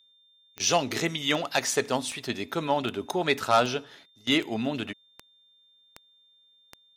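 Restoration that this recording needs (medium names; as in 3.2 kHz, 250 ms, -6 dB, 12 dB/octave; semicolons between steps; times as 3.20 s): de-click; band-stop 3.6 kHz, Q 30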